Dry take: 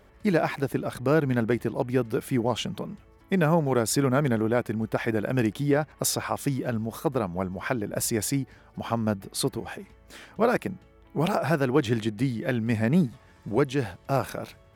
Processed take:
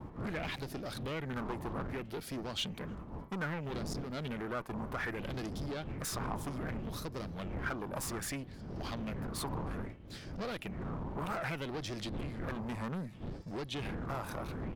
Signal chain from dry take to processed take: wind noise 210 Hz -27 dBFS; compressor 12:1, threshold -23 dBFS, peak gain reduction 15 dB; one-sided clip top -33 dBFS; outdoor echo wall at 53 m, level -26 dB; soft clip -28.5 dBFS, distortion -13 dB; expander -37 dBFS; LFO bell 0.63 Hz 950–5200 Hz +12 dB; gain -5.5 dB

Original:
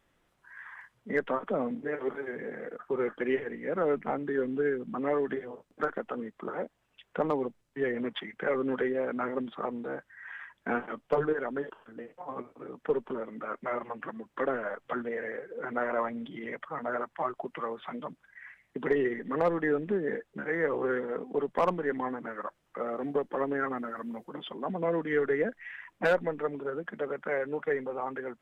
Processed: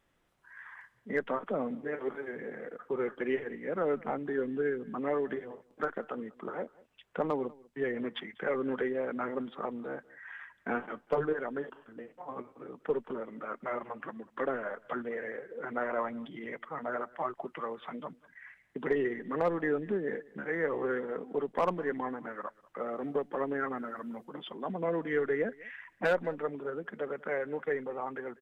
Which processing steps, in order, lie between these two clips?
outdoor echo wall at 33 m, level -23 dB; gain -2.5 dB

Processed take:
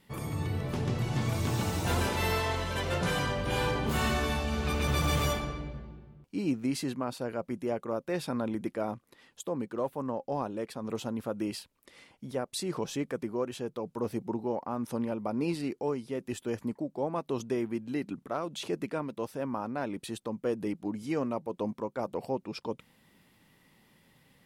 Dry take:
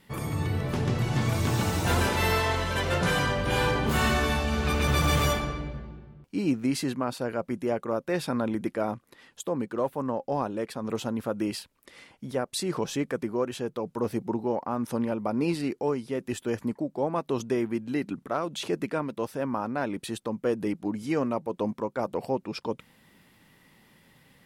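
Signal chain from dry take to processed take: bell 1600 Hz -2.5 dB; gain -4 dB

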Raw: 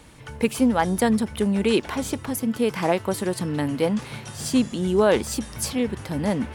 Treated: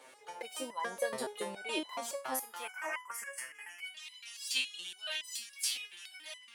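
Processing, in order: high-pass sweep 540 Hz -> 2800 Hz, 1.8–3.86; 2.62–3.86 Butterworth band-stop 3900 Hz, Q 1.3; stepped resonator 7.1 Hz 130–1000 Hz; gain +5.5 dB

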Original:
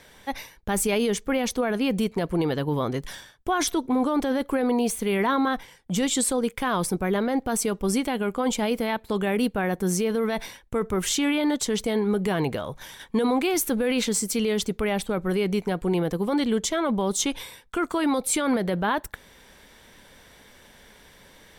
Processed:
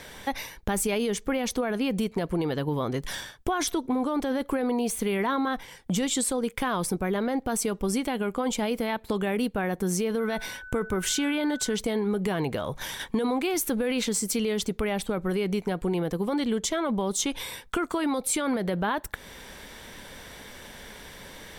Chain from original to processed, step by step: compressor 3:1, threshold -35 dBFS, peak gain reduction 12 dB; 10.19–11.75 whine 1500 Hz -48 dBFS; gain +7.5 dB

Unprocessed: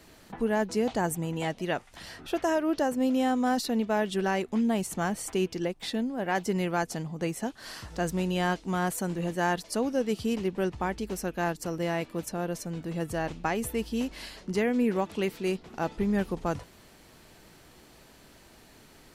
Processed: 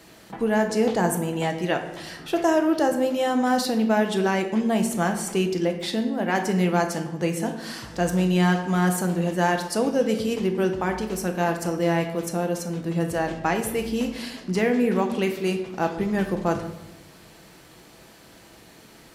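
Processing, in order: HPF 100 Hz 6 dB/oct; shoebox room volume 370 m³, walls mixed, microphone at 0.69 m; gain +4.5 dB

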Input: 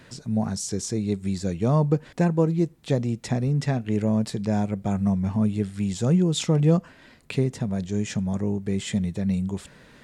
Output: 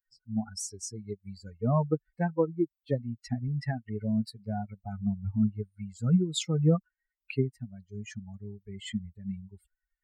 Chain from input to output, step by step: per-bin expansion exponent 3

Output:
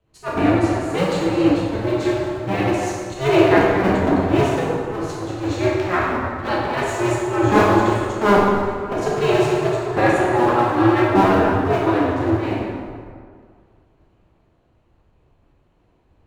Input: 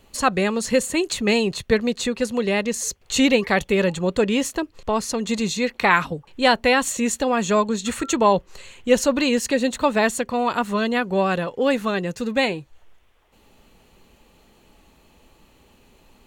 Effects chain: cycle switcher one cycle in 2, inverted; LPF 1300 Hz 6 dB/oct; auto swell 0.169 s; plate-style reverb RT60 2.8 s, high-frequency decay 0.55×, DRR -6.5 dB; three-band expander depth 40%; gain -1 dB

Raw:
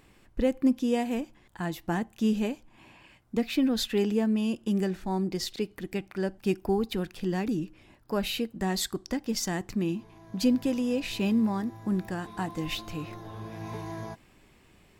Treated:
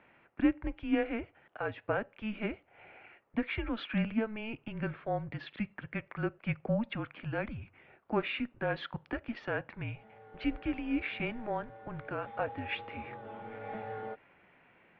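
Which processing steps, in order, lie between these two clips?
added harmonics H 3 -30 dB, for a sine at -13 dBFS; mistuned SSB -220 Hz 450–2900 Hz; gain +2.5 dB

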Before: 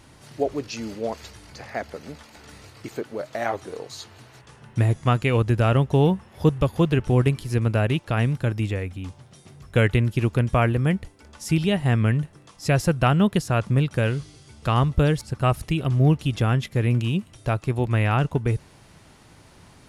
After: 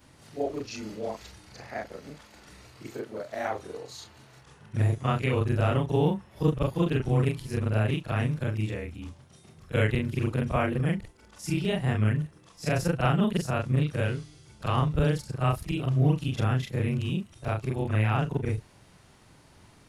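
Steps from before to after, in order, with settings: short-time reversal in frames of 93 ms; gain -2 dB

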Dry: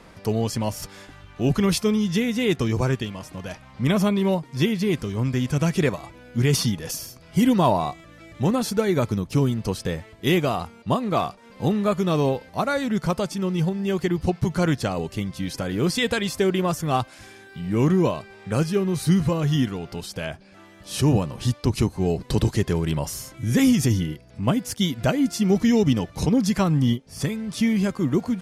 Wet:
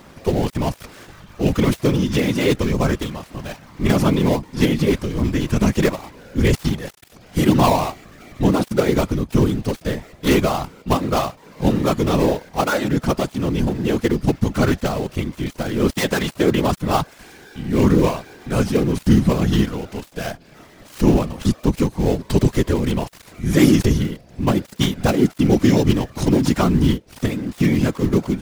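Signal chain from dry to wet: switching dead time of 0.14 ms; whisperiser; gain +4 dB

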